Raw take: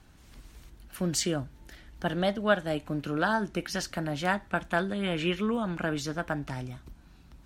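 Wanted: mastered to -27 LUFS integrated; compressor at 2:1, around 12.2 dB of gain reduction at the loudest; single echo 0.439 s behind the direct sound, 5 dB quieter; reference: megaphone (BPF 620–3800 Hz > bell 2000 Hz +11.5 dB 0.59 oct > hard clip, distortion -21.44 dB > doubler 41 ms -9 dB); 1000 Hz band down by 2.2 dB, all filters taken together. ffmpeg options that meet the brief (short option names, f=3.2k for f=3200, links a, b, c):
-filter_complex "[0:a]equalizer=f=1k:t=o:g=-3.5,acompressor=threshold=-42dB:ratio=2,highpass=620,lowpass=3.8k,equalizer=f=2k:t=o:w=0.59:g=11.5,aecho=1:1:439:0.562,asoftclip=type=hard:threshold=-26.5dB,asplit=2[a][b];[b]adelay=41,volume=-9dB[c];[a][c]amix=inputs=2:normalize=0,volume=12.5dB"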